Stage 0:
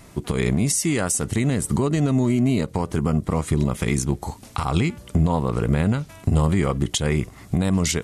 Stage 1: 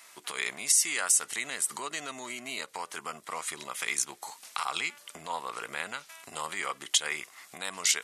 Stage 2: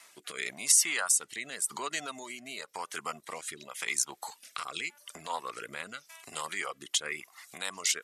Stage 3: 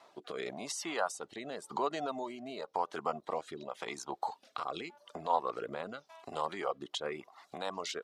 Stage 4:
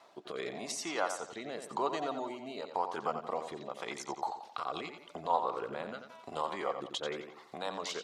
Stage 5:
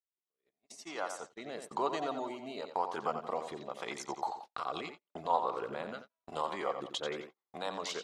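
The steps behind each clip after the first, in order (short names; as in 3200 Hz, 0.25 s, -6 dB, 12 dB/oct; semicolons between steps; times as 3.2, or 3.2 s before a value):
HPF 1300 Hz 12 dB/oct
rotary speaker horn 0.9 Hz; reverb removal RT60 0.7 s; gain +2 dB
EQ curve 140 Hz 0 dB, 780 Hz +6 dB, 2100 Hz -15 dB, 3900 Hz -9 dB, 9300 Hz -27 dB; gain +3 dB
analogue delay 88 ms, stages 4096, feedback 43%, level -8 dB
opening faded in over 1.79 s; gate -45 dBFS, range -42 dB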